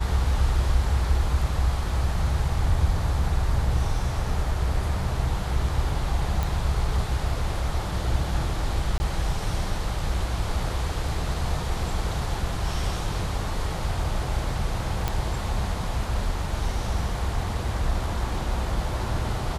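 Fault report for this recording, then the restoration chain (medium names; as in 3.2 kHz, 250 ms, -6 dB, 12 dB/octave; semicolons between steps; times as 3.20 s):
6.43 s: pop
8.98–9.00 s: dropout 20 ms
15.08 s: pop -11 dBFS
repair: de-click; interpolate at 8.98 s, 20 ms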